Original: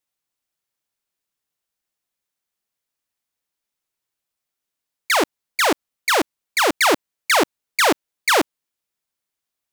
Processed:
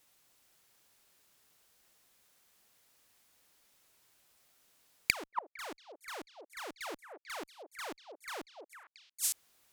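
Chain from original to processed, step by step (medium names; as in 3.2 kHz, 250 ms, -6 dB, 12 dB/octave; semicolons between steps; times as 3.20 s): Chebyshev shaper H 8 -28 dB, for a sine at -9.5 dBFS; repeats whose band climbs or falls 227 ms, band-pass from 550 Hz, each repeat 1.4 oct, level -4.5 dB; inverted gate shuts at -27 dBFS, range -41 dB; trim +14.5 dB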